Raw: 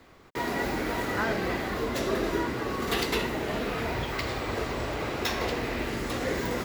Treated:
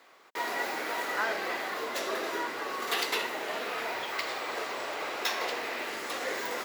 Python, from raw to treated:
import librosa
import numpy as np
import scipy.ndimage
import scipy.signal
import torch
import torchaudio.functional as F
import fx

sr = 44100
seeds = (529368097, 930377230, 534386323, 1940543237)

y = scipy.signal.sosfilt(scipy.signal.butter(2, 590.0, 'highpass', fs=sr, output='sos'), x)